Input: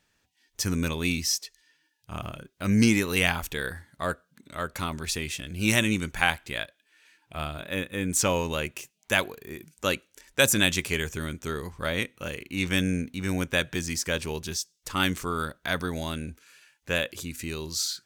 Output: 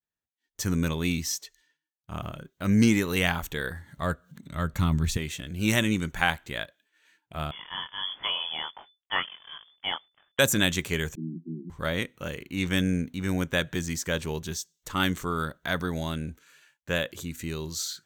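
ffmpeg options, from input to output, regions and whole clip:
-filter_complex "[0:a]asettb=1/sr,asplit=3[a][b][c];[a]atrim=end=3.684[d];[b]atrim=start=3.68:end=5.17,asetpts=PTS-STARTPTS,afade=t=in:d=0.004:c=qsin,afade=t=out:st=1.486:d=0.004:c=qsin,asubboost=boost=10:cutoff=220,acompressor=mode=upward:threshold=-39dB:ratio=2.5:attack=3.2:release=140:knee=2.83:detection=peak,bandreject=f=1.5k:w=20[e];[c]atrim=start=5.166[f];[d][e]acrossfade=d=0.004:c1=hsin:c2=qsin[g];[g][f]acrossfade=d=0.004:c1=qsin:c2=hsin,asettb=1/sr,asplit=3[h][i][j];[h]atrim=end=7.514[k];[i]atrim=start=7.51:end=10.39,asetpts=PTS-STARTPTS,afade=t=in:d=0.004:c=qsin,afade=t=out:st=2.876:d=0.004:c=qsin,flanger=delay=17.5:depth=7:speed=1.4,acrusher=bits=8:dc=4:mix=0:aa=0.000001,lowpass=f=3k:t=q:w=0.5098,lowpass=f=3k:t=q:w=0.6013,lowpass=f=3k:t=q:w=0.9,lowpass=f=3k:t=q:w=2.563,afreqshift=-3500[l];[j]atrim=start=10.386[m];[k][l]acrossfade=d=0.004:c1=hsin:c2=qsin[n];[n][m]acrossfade=d=0.004:c1=qsin:c2=hsin,asettb=1/sr,asplit=3[o][p][q];[o]atrim=end=11.154[r];[p]atrim=start=11.15:end=11.7,asetpts=PTS-STARTPTS,afade=t=in:d=0.004:c=qsin,afade=t=out:st=0.546:d=0.004:c=qsin,aeval=exprs='val(0)+0.5*0.0158*sgn(val(0))':c=same,agate=range=-33dB:threshold=-30dB:ratio=3:release=100:detection=peak,asuperpass=centerf=240:order=20:qfactor=1.2[s];[q]atrim=start=11.696[t];[r][s]acrossfade=d=0.004:c1=hsin:c2=qsin[u];[u][t]acrossfade=d=0.004:c1=qsin:c2=hsin,agate=range=-33dB:threshold=-56dB:ratio=3:detection=peak,equalizer=f=160:t=o:w=0.33:g=4,equalizer=f=2.5k:t=o:w=0.33:g=-5,equalizer=f=5k:t=o:w=0.33:g=-8,equalizer=f=10k:t=o:w=0.33:g=-9"

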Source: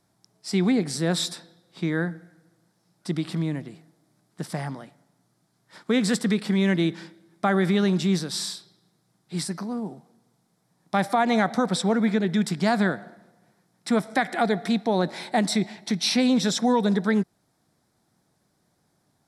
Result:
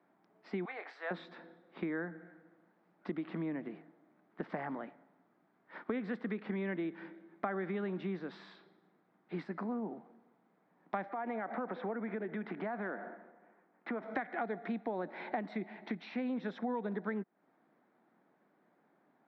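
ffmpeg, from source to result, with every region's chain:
-filter_complex "[0:a]asettb=1/sr,asplit=3[a][b][c];[a]atrim=end=0.654[d];[b]atrim=start=0.65:end=1.11,asetpts=PTS-STARTPTS,afade=t=in:d=0.004:c=qsin,afade=t=out:st=0.456:d=0.004:c=qsin,highpass=f=710:w=0.5412,highpass=f=710:w=1.3066,asplit=2[e][f];[f]adelay=26,volume=-11dB[g];[e][g]amix=inputs=2:normalize=0,atrim=end_sample=20286[h];[c]atrim=start=1.106[i];[d][h]acrossfade=d=0.004:c1=hsin:c2=qsin[j];[j][i]acrossfade=d=0.004:c1=qsin:c2=hsin,asettb=1/sr,asplit=3[k][l][m];[k]atrim=end=11.094[n];[l]atrim=start=11.09:end=14.02,asetpts=PTS-STARTPTS,afade=t=in:d=0.004:c=qsin,afade=t=out:st=2.926:d=0.004:c=qsin,acompressor=threshold=-27dB:ratio=4:attack=3.2:release=140:knee=1:detection=peak,asoftclip=type=hard:threshold=-22.5dB,highpass=230,lowpass=2.6k[o];[m]atrim=start=14.016[p];[n][o]acrossfade=d=0.004:c1=hsin:c2=qsin[q];[q][p]acrossfade=d=0.004:c1=qsin:c2=hsin,highpass=f=220:w=0.5412,highpass=f=220:w=1.3066,acompressor=threshold=-36dB:ratio=6,lowpass=f=2.3k:w=0.5412,lowpass=f=2.3k:w=1.3066,volume=1dB"

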